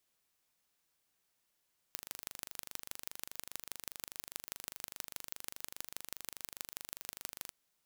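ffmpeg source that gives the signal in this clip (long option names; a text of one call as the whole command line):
ffmpeg -f lavfi -i "aevalsrc='0.266*eq(mod(n,1771),0)*(0.5+0.5*eq(mod(n,7084),0))':duration=5.57:sample_rate=44100" out.wav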